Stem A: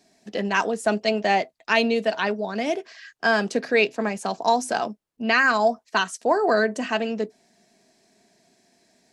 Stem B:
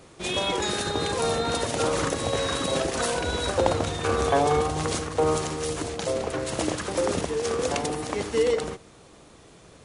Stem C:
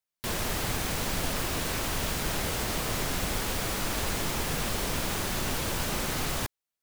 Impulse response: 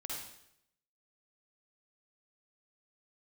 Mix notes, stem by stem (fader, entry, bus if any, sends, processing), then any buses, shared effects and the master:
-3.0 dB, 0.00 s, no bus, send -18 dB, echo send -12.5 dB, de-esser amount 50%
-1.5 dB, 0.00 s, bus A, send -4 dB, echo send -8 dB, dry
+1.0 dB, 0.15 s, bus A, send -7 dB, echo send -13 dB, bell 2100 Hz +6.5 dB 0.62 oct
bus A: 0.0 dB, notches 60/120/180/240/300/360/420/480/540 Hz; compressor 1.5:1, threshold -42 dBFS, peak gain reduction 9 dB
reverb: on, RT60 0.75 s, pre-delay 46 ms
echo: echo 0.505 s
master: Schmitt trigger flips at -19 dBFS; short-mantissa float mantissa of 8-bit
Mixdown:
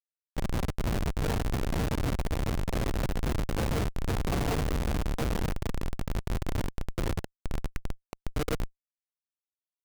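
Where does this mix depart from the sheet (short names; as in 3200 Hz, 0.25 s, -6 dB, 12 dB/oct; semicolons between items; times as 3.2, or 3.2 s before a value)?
stem A -3.0 dB -> -13.5 dB; stem C: send -7 dB -> -13 dB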